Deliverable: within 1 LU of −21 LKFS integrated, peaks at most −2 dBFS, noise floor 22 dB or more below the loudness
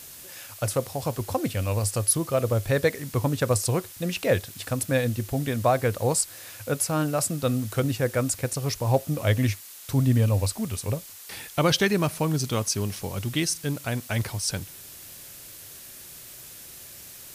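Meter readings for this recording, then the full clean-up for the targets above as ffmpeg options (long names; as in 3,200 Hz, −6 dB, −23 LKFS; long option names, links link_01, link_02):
background noise floor −44 dBFS; target noise floor −48 dBFS; integrated loudness −26.0 LKFS; sample peak −8.5 dBFS; target loudness −21.0 LKFS
→ -af "afftdn=noise_reduction=6:noise_floor=-44"
-af "volume=5dB"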